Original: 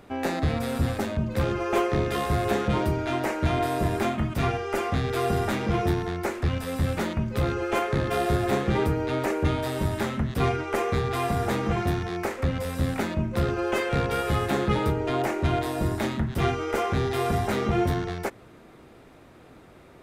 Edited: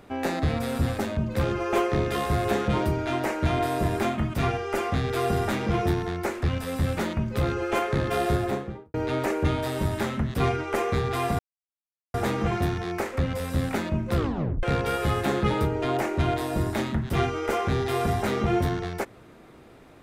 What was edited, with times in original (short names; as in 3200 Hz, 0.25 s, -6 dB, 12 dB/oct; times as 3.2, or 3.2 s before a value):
8.28–8.94 studio fade out
11.39 insert silence 0.75 s
13.41 tape stop 0.47 s